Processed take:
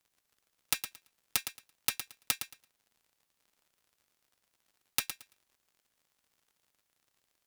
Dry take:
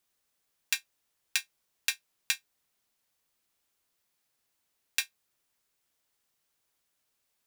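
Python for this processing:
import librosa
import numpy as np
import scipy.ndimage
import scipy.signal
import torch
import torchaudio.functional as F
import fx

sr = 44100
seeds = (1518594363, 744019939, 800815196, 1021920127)

p1 = (np.mod(10.0 ** (13.5 / 20.0) * x + 1.0, 2.0) - 1.0) / 10.0 ** (13.5 / 20.0)
p2 = fx.dmg_crackle(p1, sr, seeds[0], per_s=80.0, level_db=-52.0)
p3 = fx.cheby_harmonics(p2, sr, harmonics=(3,), levels_db=(-7,), full_scale_db=-13.5)
p4 = p3 + fx.echo_feedback(p3, sr, ms=112, feedback_pct=18, wet_db=-9.5, dry=0)
y = p4 * 10.0 ** (6.0 / 20.0)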